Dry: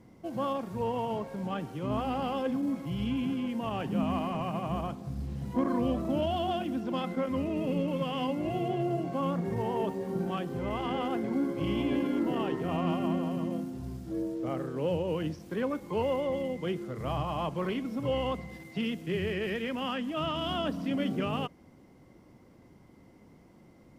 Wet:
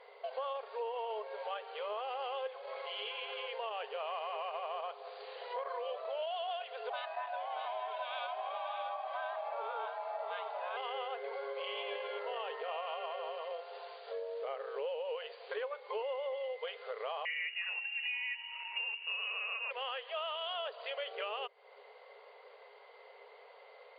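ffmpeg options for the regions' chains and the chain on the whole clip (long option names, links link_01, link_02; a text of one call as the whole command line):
ffmpeg -i in.wav -filter_complex "[0:a]asettb=1/sr,asplit=3[link_01][link_02][link_03];[link_01]atrim=end=6.904[link_04];[link_02]atrim=start=6.9:end=10.77,asetpts=PTS-STARTPTS,afade=type=in:duration=0.004:curve=qsin,afade=type=out:start_time=3.866:duration=0.004:curve=qsin,aeval=exprs='val(0)*sin(2*PI*460*n/s)':channel_layout=same,aecho=1:1:627:0.447,atrim=end_sample=170667[link_05];[link_03]atrim=start=10.766[link_06];[link_04][link_05]acrossfade=duration=0.004:curve1=hsin:curve2=qsin[link_07];[link_07][link_06]acrossfade=duration=0.004:curve1=qsin:curve2=hsin,asettb=1/sr,asplit=3[link_08][link_09][link_10];[link_08]atrim=end=17.254[link_11];[link_09]atrim=start=17.25:end=19.71,asetpts=PTS-STARTPTS,afade=type=in:duration=0.004:curve=qsin,afade=type=out:start_time=2.456:duration=0.004:curve=qsin,equalizer=frequency=1000:width_type=o:width=1.2:gain=8,lowpass=frequency=2600:width_type=q:width=0.5098,lowpass=frequency=2600:width_type=q:width=0.6013,lowpass=frequency=2600:width_type=q:width=0.9,lowpass=frequency=2600:width_type=q:width=2.563,afreqshift=-3000,flanger=delay=4.4:depth=2.4:regen=-85:speed=1:shape=triangular[link_12];[link_10]atrim=start=19.706[link_13];[link_11][link_12]acrossfade=duration=0.004:curve1=hsin:curve2=qsin[link_14];[link_14][link_13]acrossfade=duration=0.004:curve1=qsin:curve2=hsin,equalizer=frequency=3100:width=1.7:gain=3.5,afftfilt=real='re*between(b*sr/4096,400,4800)':imag='im*between(b*sr/4096,400,4800)':win_size=4096:overlap=0.75,acompressor=threshold=-47dB:ratio=4,volume=8dB" out.wav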